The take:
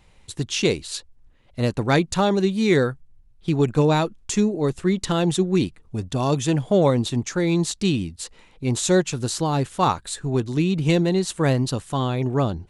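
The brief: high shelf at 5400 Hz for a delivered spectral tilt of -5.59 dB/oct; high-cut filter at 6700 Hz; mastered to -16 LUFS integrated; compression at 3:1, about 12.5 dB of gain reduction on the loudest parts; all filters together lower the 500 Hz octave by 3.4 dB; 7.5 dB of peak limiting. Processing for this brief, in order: LPF 6700 Hz; bell 500 Hz -4.5 dB; high shelf 5400 Hz -8 dB; compressor 3:1, threshold -33 dBFS; gain +21 dB; limiter -6 dBFS

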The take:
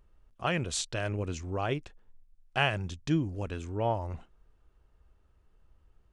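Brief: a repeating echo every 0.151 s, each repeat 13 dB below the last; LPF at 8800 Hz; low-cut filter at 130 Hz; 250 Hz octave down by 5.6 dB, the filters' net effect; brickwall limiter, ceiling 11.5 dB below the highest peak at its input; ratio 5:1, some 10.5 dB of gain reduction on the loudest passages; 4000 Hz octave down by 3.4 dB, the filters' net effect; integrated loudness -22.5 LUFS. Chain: HPF 130 Hz; LPF 8800 Hz; bell 250 Hz -8 dB; bell 4000 Hz -5 dB; compressor 5:1, threshold -36 dBFS; limiter -33 dBFS; feedback echo 0.151 s, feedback 22%, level -13 dB; gain +22.5 dB

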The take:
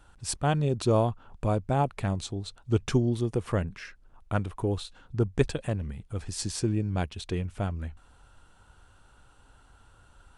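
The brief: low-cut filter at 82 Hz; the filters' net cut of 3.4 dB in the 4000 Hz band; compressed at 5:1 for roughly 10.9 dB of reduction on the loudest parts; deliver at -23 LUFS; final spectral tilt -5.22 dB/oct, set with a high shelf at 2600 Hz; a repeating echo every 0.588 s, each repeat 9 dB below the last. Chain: HPF 82 Hz; high shelf 2600 Hz +3.5 dB; bell 4000 Hz -7.5 dB; compressor 5:1, threshold -31 dBFS; feedback echo 0.588 s, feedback 35%, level -9 dB; gain +14 dB

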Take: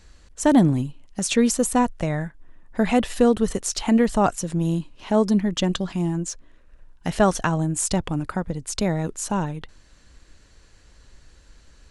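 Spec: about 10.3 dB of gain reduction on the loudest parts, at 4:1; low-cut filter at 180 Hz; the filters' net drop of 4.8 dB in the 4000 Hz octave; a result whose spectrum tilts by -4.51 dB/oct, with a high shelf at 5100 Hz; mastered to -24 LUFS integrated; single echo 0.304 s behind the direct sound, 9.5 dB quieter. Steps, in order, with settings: HPF 180 Hz; bell 4000 Hz -9 dB; high shelf 5100 Hz +4.5 dB; compressor 4:1, threshold -26 dBFS; echo 0.304 s -9.5 dB; gain +6 dB

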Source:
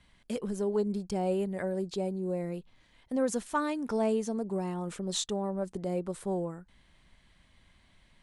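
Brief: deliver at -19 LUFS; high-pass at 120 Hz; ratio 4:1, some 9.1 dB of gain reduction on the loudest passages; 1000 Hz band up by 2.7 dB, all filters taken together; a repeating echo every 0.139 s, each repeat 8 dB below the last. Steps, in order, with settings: HPF 120 Hz; bell 1000 Hz +3.5 dB; compressor 4:1, threshold -33 dBFS; feedback echo 0.139 s, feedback 40%, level -8 dB; gain +17.5 dB

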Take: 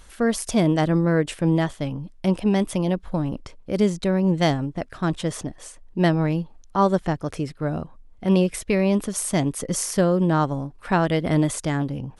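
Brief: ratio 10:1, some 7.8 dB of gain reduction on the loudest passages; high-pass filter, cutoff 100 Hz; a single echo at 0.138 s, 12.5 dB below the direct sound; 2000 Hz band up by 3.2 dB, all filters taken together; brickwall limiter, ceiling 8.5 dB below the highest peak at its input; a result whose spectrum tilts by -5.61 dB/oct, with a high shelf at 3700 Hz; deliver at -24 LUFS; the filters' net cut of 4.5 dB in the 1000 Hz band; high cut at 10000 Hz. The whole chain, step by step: HPF 100 Hz; LPF 10000 Hz; bell 1000 Hz -7.5 dB; bell 2000 Hz +7 dB; high shelf 3700 Hz -3.5 dB; compressor 10:1, threshold -23 dBFS; limiter -21.5 dBFS; echo 0.138 s -12.5 dB; gain +7 dB

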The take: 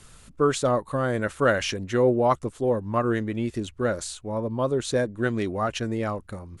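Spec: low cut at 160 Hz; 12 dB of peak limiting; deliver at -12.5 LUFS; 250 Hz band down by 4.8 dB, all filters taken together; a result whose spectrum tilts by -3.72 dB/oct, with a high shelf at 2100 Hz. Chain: HPF 160 Hz; bell 250 Hz -5.5 dB; high shelf 2100 Hz +3.5 dB; gain +18 dB; limiter -1.5 dBFS

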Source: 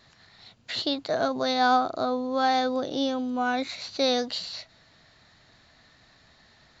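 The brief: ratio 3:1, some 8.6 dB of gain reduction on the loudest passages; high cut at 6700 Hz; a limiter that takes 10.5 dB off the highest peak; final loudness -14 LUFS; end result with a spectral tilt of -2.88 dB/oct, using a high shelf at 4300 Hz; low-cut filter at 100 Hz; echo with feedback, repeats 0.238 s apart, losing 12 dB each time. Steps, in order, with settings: HPF 100 Hz; LPF 6700 Hz; high shelf 4300 Hz +6 dB; compressor 3:1, threshold -28 dBFS; limiter -27.5 dBFS; feedback echo 0.238 s, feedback 25%, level -12 dB; gain +22 dB

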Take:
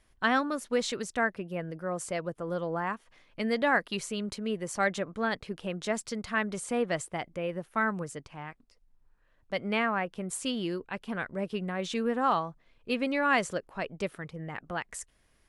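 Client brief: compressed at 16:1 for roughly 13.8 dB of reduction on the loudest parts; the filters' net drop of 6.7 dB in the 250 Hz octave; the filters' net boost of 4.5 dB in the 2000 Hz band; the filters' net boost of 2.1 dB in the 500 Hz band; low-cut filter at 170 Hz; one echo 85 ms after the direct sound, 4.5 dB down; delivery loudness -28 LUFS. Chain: HPF 170 Hz; bell 250 Hz -8 dB; bell 500 Hz +4 dB; bell 2000 Hz +5.5 dB; compressor 16:1, threshold -31 dBFS; echo 85 ms -4.5 dB; gain +8 dB

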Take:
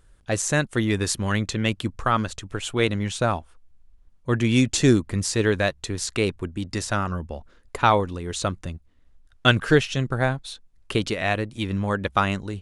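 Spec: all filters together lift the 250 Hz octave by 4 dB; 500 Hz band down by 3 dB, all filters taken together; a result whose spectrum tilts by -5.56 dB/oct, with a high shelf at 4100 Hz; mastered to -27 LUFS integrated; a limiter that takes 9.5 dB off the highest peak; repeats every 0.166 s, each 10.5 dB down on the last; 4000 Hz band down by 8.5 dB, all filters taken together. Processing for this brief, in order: bell 250 Hz +6.5 dB; bell 500 Hz -6 dB; bell 4000 Hz -7.5 dB; high shelf 4100 Hz -6.5 dB; limiter -12.5 dBFS; feedback echo 0.166 s, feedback 30%, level -10.5 dB; gain -1.5 dB

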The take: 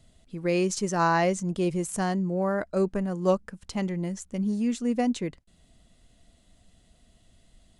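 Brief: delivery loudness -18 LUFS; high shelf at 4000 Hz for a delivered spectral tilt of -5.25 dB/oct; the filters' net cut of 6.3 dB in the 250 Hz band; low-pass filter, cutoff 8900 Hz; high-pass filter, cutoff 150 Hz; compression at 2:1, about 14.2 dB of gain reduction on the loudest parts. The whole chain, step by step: HPF 150 Hz; LPF 8900 Hz; bell 250 Hz -8 dB; high shelf 4000 Hz -5.5 dB; compressor 2:1, threshold -46 dBFS; gain +24 dB

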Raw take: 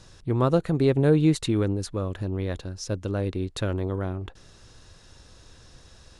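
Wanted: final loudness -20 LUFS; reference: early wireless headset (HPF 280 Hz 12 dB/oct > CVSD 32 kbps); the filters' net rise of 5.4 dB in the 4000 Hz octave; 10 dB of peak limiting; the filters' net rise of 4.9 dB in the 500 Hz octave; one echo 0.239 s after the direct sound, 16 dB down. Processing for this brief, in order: bell 500 Hz +6.5 dB; bell 4000 Hz +6 dB; limiter -15 dBFS; HPF 280 Hz 12 dB/oct; echo 0.239 s -16 dB; CVSD 32 kbps; gain +8.5 dB

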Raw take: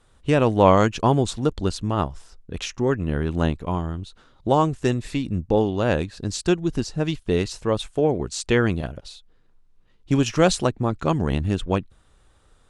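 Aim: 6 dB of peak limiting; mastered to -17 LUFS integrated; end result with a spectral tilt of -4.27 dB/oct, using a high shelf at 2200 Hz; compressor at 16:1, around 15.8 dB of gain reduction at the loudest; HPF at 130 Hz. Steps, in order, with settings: HPF 130 Hz; high shelf 2200 Hz +7.5 dB; compressor 16:1, threshold -24 dBFS; gain +14.5 dB; limiter -4 dBFS

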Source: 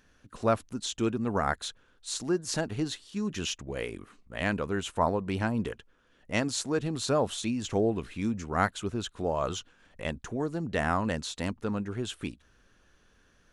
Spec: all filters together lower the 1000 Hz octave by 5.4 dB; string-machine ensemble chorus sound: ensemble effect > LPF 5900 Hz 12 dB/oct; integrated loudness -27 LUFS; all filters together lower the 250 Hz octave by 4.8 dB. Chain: bell 250 Hz -6 dB; bell 1000 Hz -7 dB; ensemble effect; LPF 5900 Hz 12 dB/oct; gain +11 dB

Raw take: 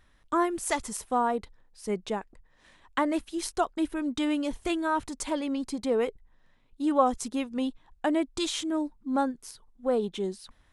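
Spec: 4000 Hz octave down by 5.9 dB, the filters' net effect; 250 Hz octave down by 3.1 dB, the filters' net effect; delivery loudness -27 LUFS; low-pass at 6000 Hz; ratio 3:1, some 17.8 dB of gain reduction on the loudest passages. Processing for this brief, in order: LPF 6000 Hz; bell 250 Hz -4 dB; bell 4000 Hz -7 dB; compressor 3:1, threshold -43 dBFS; gain +17 dB

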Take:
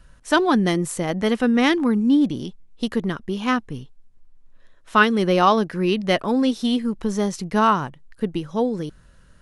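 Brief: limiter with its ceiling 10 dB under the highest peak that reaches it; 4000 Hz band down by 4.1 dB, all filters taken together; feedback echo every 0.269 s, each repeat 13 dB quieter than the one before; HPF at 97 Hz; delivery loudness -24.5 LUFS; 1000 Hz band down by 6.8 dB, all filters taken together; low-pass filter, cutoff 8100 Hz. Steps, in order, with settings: HPF 97 Hz; LPF 8100 Hz; bell 1000 Hz -8.5 dB; bell 4000 Hz -5 dB; limiter -17 dBFS; feedback echo 0.269 s, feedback 22%, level -13 dB; gain +1.5 dB

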